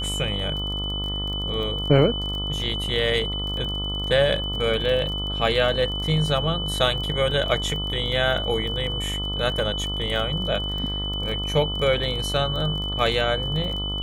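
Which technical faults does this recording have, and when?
buzz 50 Hz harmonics 27 -30 dBFS
crackle 28/s -30 dBFS
tone 3000 Hz -28 dBFS

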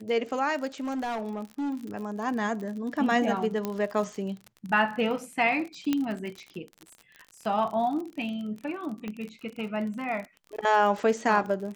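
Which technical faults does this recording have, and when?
crackle 43/s -34 dBFS
0.8–1.77 clipped -27.5 dBFS
3.65 pop -16 dBFS
5.93 pop -13 dBFS
9.08 pop -22 dBFS

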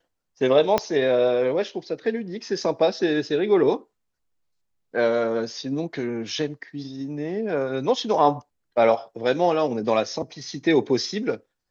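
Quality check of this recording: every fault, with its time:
0.78 pop -7 dBFS

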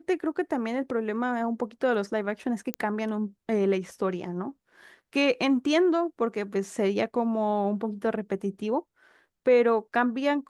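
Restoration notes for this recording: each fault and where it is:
2.74 pop -14 dBFS

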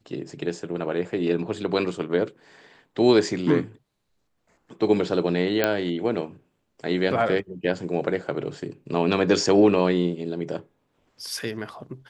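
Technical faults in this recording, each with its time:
5.64 pop -6 dBFS

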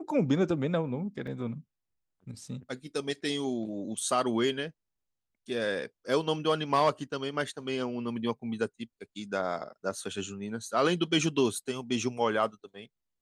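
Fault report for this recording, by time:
1.27 gap 4.3 ms

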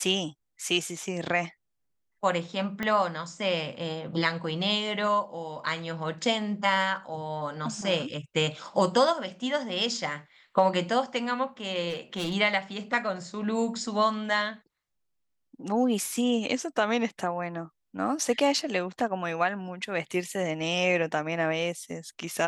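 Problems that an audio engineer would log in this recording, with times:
2.83 pop -16 dBFS
11.89–12.35 clipped -26.5 dBFS

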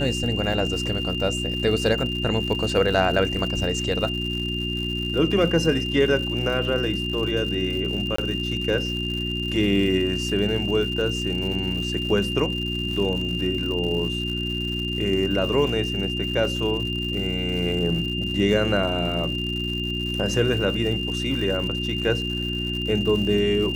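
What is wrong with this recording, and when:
crackle 160/s -31 dBFS
hum 60 Hz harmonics 6 -29 dBFS
tone 2800 Hz -28 dBFS
8.16–8.18 gap 24 ms

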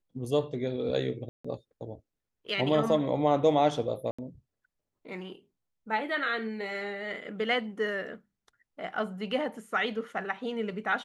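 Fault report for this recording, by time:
1.29–1.45 gap 0.155 s
4.11–4.18 gap 75 ms

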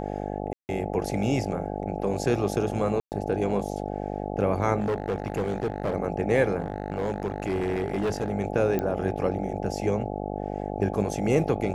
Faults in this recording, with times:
buzz 50 Hz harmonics 17 -32 dBFS
0.53–0.69 gap 0.159 s
3–3.12 gap 0.119 s
4.79–5.95 clipped -22.5 dBFS
6.59–8.3 clipped -22.5 dBFS
8.79 pop -15 dBFS

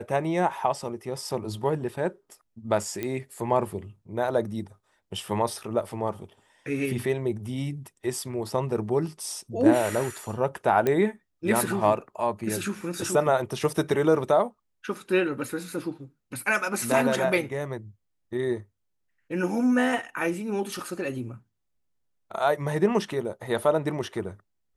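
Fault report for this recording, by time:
3.03 pop -16 dBFS
10.87 pop -12 dBFS

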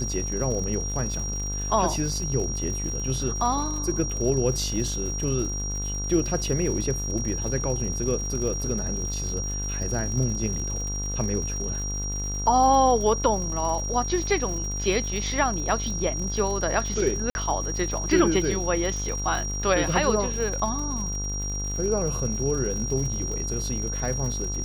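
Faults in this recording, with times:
buzz 50 Hz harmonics 31 -31 dBFS
crackle 130/s -33 dBFS
tone 5700 Hz -31 dBFS
17.3–17.35 gap 51 ms

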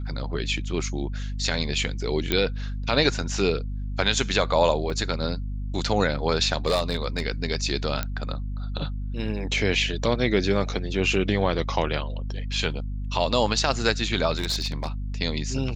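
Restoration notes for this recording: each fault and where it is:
hum 50 Hz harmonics 5 -30 dBFS
2.32 pop -8 dBFS
4.9 gap 2.4 ms
6.66–7.23 clipped -17 dBFS
8.03 pop -11 dBFS
14.37–14.88 clipped -21 dBFS

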